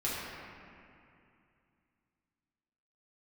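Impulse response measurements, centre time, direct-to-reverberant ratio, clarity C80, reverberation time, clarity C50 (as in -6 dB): 154 ms, -9.0 dB, -0.5 dB, 2.5 s, -2.5 dB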